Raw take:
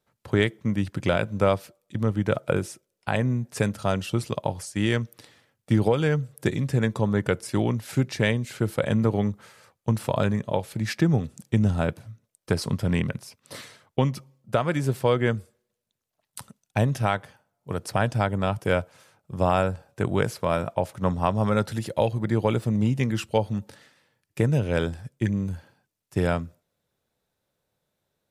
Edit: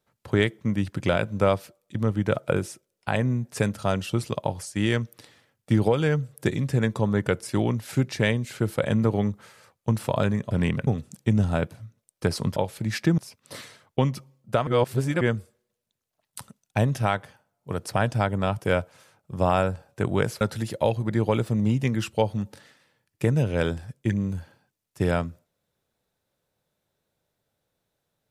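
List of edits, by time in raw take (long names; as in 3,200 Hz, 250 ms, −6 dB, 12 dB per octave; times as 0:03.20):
0:10.51–0:11.13: swap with 0:12.82–0:13.18
0:14.67–0:15.21: reverse
0:20.41–0:21.57: remove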